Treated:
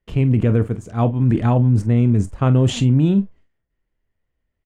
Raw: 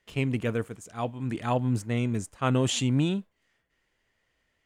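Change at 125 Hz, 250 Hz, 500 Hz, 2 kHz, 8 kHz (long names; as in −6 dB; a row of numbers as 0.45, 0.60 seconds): +13.5, +10.5, +7.5, +1.0, −1.0 decibels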